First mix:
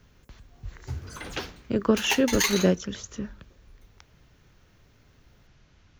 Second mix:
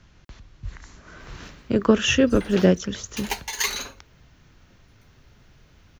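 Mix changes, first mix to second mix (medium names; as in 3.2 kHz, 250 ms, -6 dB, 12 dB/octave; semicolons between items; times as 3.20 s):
speech +4.5 dB; background: entry +1.20 s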